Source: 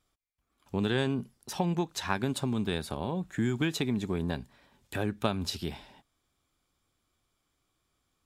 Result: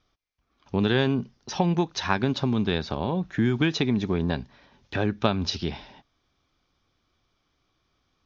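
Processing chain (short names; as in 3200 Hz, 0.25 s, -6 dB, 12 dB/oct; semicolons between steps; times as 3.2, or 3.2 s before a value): steep low-pass 6300 Hz 96 dB/oct; gain +6 dB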